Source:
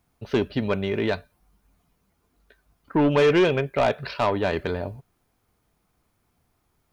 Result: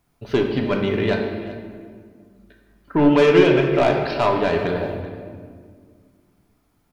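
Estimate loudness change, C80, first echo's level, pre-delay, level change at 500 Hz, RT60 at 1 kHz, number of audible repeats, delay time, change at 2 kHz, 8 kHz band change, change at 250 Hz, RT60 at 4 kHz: +4.5 dB, 5.5 dB, -17.5 dB, 3 ms, +5.0 dB, 1.7 s, 1, 0.382 s, +4.0 dB, n/a, +5.5 dB, 1.3 s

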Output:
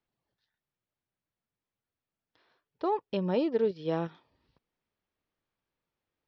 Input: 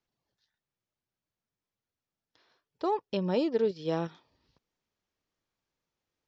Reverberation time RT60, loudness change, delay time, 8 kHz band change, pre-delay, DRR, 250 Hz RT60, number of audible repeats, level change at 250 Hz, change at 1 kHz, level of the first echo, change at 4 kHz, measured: none, 0.0 dB, none, n/a, none, none, none, none, 0.0 dB, 0.0 dB, none, -3.0 dB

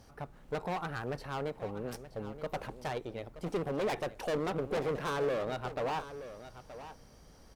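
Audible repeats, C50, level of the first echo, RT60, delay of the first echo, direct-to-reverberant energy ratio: 1, none, -13.0 dB, none, 0.925 s, none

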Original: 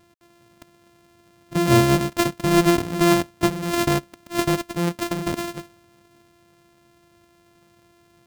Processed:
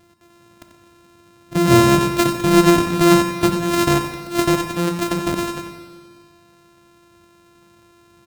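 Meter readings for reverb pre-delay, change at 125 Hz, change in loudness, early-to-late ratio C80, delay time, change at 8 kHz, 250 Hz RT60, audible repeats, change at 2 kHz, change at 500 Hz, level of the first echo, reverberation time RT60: 5 ms, +3.0 dB, +4.5 dB, 7.0 dB, 90 ms, +4.0 dB, 1.7 s, 1, +4.0 dB, +4.0 dB, -10.5 dB, 1.7 s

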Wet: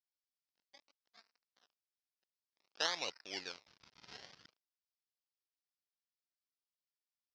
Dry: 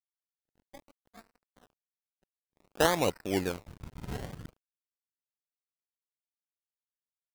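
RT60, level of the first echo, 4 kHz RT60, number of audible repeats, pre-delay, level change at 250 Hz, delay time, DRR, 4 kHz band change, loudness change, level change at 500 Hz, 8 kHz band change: none, none, none, none, none, -23.5 dB, none, none, -2.0 dB, -9.0 dB, -18.5 dB, -9.0 dB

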